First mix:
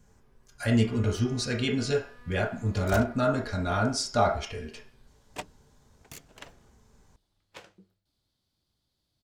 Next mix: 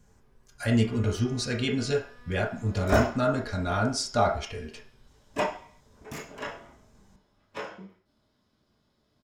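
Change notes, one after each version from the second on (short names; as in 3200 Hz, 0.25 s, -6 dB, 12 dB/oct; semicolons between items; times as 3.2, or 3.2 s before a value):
second sound: send on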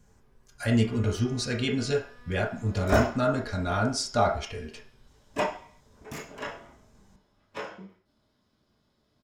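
none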